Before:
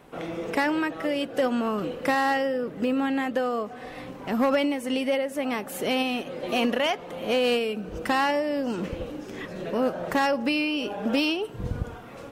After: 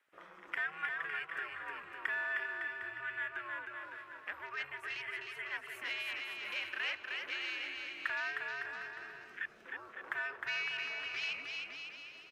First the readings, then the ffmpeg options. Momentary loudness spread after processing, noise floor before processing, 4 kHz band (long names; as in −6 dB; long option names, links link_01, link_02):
9 LU, −41 dBFS, −10.5 dB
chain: -filter_complex "[0:a]afwtdn=0.0158,acompressor=threshold=-29dB:ratio=6,highpass=frequency=1800:width_type=q:width=2.5,afreqshift=-150,asplit=2[link_01][link_02];[link_02]aecho=0:1:310|558|756.4|915.1|1042:0.631|0.398|0.251|0.158|0.1[link_03];[link_01][link_03]amix=inputs=2:normalize=0,volume=-5.5dB"